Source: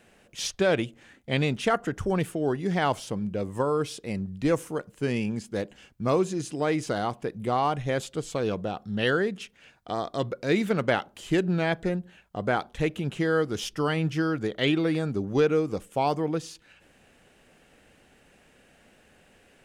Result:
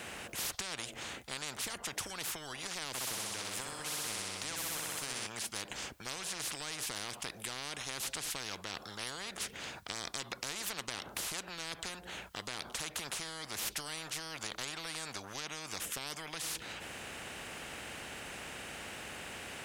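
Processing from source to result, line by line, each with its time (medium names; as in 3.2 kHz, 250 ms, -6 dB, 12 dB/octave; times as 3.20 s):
2.88–5.27 s: flutter echo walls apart 10.8 m, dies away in 1.1 s
whole clip: high-pass 71 Hz; compression, threshold -28 dBFS; spectrum-flattening compressor 10:1; trim -2 dB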